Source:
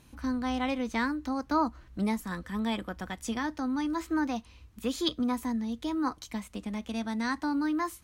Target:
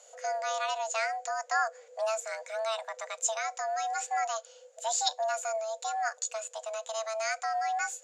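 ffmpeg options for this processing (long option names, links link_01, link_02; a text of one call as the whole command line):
ffmpeg -i in.wav -af "lowpass=frequency=6600:width_type=q:width=12,afreqshift=440,volume=-2dB" out.wav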